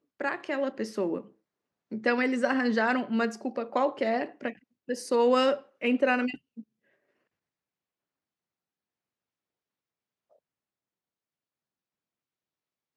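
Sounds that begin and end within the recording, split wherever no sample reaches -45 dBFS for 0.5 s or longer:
1.92–6.62 s

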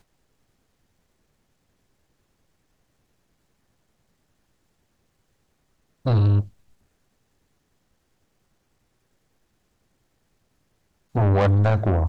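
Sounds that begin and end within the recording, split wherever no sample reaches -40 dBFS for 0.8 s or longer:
6.05–6.48 s

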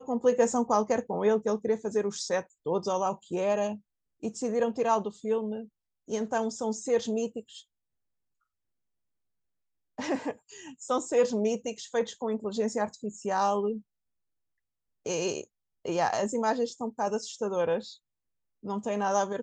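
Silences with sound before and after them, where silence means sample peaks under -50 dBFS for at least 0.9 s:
7.62–9.98 s
13.81–15.06 s

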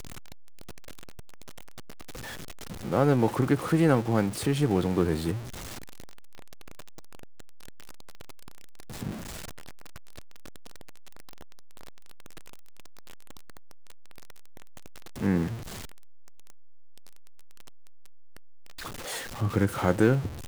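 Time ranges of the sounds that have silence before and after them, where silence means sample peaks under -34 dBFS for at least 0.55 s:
2.72–5.39 s
9.03–9.17 s
15.18–15.56 s

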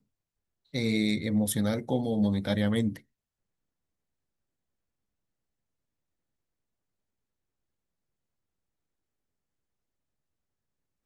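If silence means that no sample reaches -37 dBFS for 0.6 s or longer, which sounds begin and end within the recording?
0.74–2.97 s

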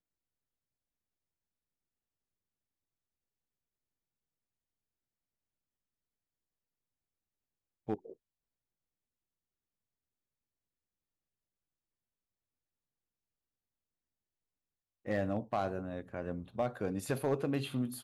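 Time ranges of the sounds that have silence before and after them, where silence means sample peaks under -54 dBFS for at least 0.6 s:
7.88–8.13 s

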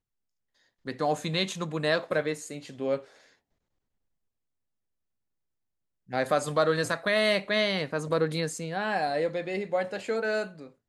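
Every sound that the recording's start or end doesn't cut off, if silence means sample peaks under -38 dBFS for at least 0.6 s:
0.87–3.00 s

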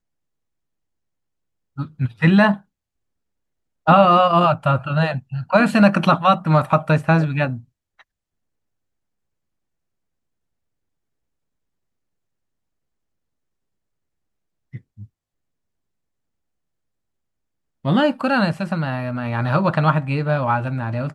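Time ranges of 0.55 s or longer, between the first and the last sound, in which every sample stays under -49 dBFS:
2.62–3.86 s
8.02–14.73 s
15.06–17.84 s

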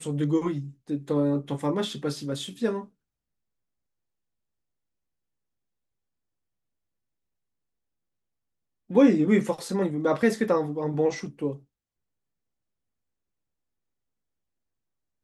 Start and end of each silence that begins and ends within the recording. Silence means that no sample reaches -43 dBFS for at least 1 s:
2.85–8.90 s

